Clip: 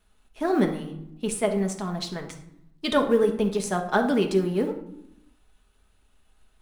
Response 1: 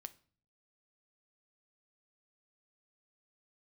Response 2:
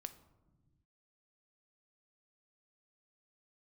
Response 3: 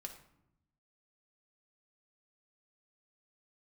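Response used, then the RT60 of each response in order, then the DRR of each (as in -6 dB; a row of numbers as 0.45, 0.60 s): 3; 0.45, 1.2, 0.80 s; 11.0, 10.0, 3.5 dB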